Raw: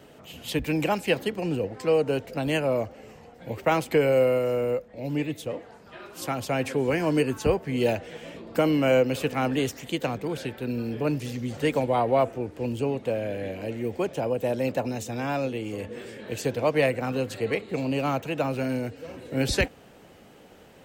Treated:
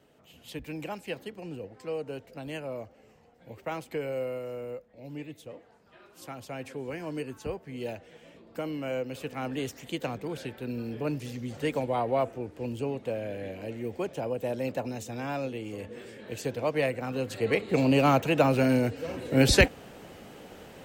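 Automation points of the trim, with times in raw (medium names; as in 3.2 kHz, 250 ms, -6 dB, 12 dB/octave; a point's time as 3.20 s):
8.96 s -12 dB
9.90 s -5 dB
17.10 s -5 dB
17.79 s +4.5 dB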